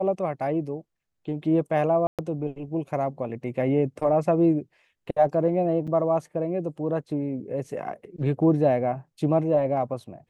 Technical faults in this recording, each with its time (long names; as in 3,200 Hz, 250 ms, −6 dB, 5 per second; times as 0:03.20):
0:02.07–0:02.19: drop-out 117 ms
0:05.87–0:05.88: drop-out 5.8 ms